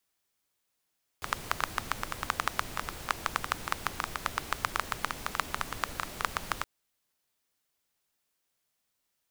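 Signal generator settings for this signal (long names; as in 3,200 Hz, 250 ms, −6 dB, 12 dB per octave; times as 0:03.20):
rain-like ticks over hiss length 5.42 s, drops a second 9.6, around 1,200 Hz, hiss −6 dB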